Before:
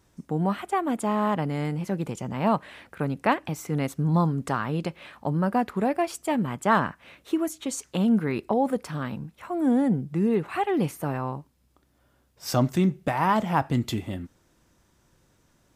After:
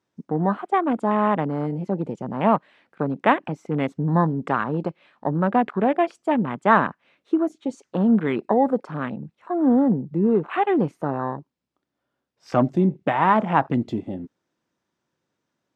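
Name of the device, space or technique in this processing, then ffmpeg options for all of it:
over-cleaned archive recording: -af "highpass=180,lowpass=5.4k,afwtdn=0.0141,volume=5dB"

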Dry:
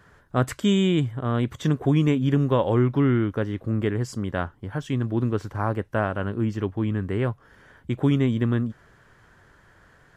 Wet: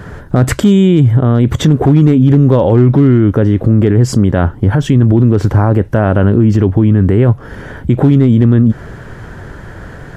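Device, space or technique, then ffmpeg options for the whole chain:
mastering chain: -af "equalizer=f=1.1k:t=o:w=0.21:g=-4,acompressor=threshold=-30dB:ratio=1.5,tiltshelf=f=790:g=5.5,asoftclip=type=hard:threshold=-14.5dB,alimiter=level_in=24.5dB:limit=-1dB:release=50:level=0:latency=1,volume=-1dB"

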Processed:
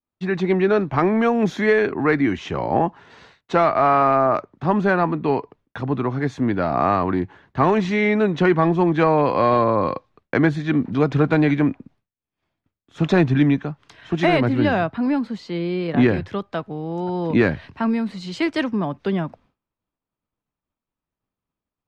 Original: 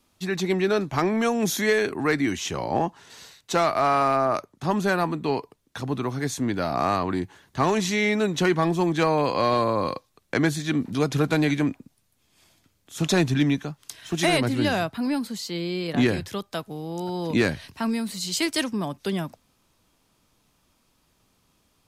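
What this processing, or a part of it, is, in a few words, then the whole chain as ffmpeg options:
hearing-loss simulation: -af "lowpass=2.1k,agate=range=-33dB:threshold=-52dB:ratio=3:detection=peak,volume=5dB"

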